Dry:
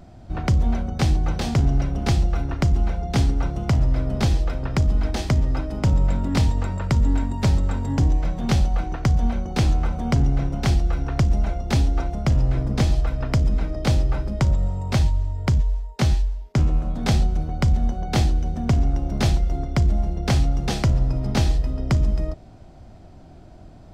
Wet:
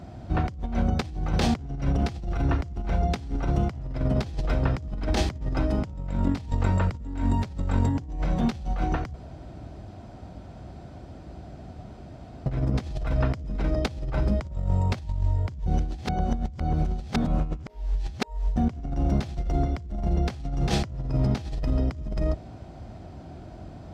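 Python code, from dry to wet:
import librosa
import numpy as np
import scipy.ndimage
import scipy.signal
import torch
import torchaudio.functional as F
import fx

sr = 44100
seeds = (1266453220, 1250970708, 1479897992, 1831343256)

y = fx.edit(x, sr, fx.room_tone_fill(start_s=9.13, length_s=3.33),
    fx.reverse_span(start_s=15.66, length_s=2.9), tone=tone)
y = scipy.signal.sosfilt(scipy.signal.butter(4, 46.0, 'highpass', fs=sr, output='sos'), y)
y = fx.high_shelf(y, sr, hz=7000.0, db=-7.5)
y = fx.over_compress(y, sr, threshold_db=-25.0, ratio=-0.5)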